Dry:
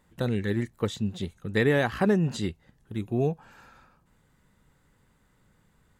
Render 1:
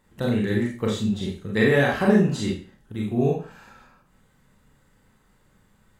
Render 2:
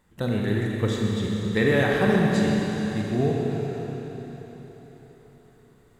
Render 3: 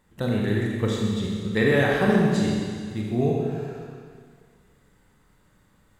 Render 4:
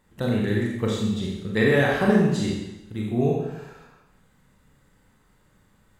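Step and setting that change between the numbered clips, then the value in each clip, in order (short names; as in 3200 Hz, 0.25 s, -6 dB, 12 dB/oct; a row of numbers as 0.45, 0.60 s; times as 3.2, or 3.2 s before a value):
Schroeder reverb, RT60: 0.38, 4.3, 2, 0.93 s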